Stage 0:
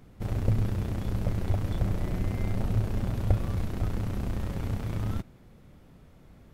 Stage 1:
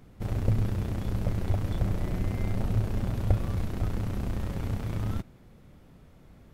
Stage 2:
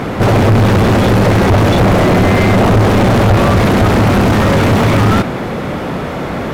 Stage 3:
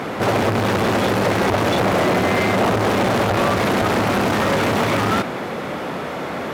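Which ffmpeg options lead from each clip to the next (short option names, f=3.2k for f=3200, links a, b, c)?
-af anull
-filter_complex "[0:a]asplit=2[a][b];[b]highpass=f=720:p=1,volume=45dB,asoftclip=type=tanh:threshold=-9dB[c];[a][c]amix=inputs=2:normalize=0,lowpass=f=1.3k:p=1,volume=-6dB,volume=8dB"
-af "highpass=f=360:p=1,volume=-4dB"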